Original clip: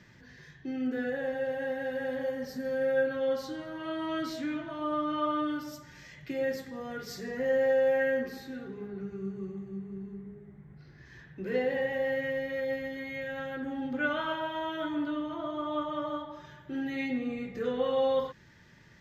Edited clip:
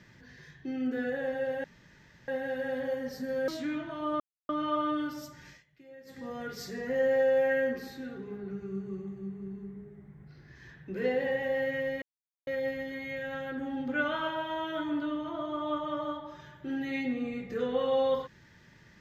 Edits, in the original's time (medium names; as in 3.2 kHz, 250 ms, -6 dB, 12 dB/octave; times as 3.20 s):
1.64 s: insert room tone 0.64 s
2.84–4.27 s: delete
4.99 s: insert silence 0.29 s
5.98–6.71 s: dip -20 dB, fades 0.16 s
12.52 s: insert silence 0.45 s